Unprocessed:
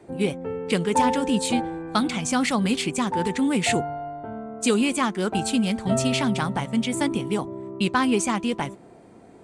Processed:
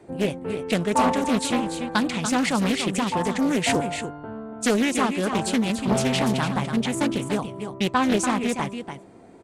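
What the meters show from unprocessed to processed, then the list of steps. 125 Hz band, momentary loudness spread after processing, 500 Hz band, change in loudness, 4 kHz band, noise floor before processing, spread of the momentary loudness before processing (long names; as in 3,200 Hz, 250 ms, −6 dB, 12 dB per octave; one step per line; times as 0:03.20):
+0.5 dB, 9 LU, +0.5 dB, +0.5 dB, 0.0 dB, −49 dBFS, 8 LU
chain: on a send: single-tap delay 289 ms −8 dB
on the sum: highs frequency-modulated by the lows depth 0.54 ms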